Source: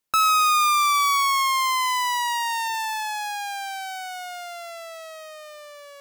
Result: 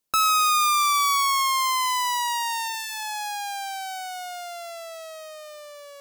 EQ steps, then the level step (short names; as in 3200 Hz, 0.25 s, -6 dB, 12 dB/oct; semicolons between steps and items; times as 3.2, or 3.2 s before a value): bell 1800 Hz -5.5 dB 1.6 oct; notches 60/120/180 Hz; notch 880 Hz, Q 15; +2.0 dB